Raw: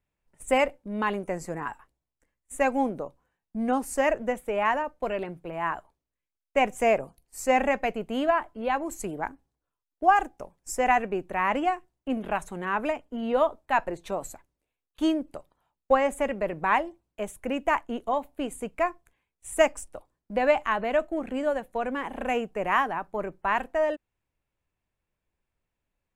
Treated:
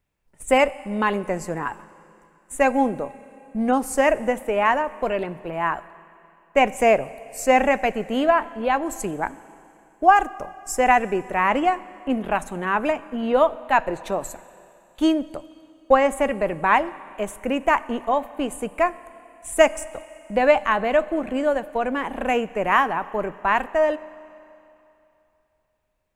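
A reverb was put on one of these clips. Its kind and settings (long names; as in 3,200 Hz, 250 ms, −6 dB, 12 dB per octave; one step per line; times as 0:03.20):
four-comb reverb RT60 2.9 s, combs from 29 ms, DRR 17.5 dB
level +5.5 dB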